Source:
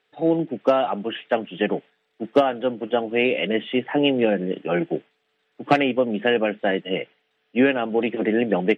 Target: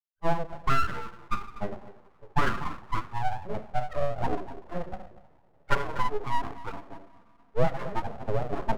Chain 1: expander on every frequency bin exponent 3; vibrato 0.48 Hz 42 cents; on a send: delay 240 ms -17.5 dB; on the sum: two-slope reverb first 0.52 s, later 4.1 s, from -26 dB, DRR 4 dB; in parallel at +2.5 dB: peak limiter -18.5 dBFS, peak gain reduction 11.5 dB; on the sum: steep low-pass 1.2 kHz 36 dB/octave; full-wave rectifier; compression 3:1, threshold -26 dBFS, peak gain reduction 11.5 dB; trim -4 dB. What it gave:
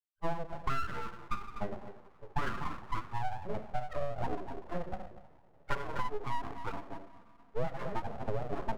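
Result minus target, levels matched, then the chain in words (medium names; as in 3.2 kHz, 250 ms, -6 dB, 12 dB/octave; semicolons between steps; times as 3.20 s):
compression: peak gain reduction +11.5 dB
expander on every frequency bin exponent 3; vibrato 0.48 Hz 42 cents; on a send: delay 240 ms -17.5 dB; on the sum: two-slope reverb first 0.52 s, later 4.1 s, from -26 dB, DRR 4 dB; in parallel at +2.5 dB: peak limiter -18.5 dBFS, peak gain reduction 11.5 dB; on the sum: steep low-pass 1.2 kHz 36 dB/octave; full-wave rectifier; trim -4 dB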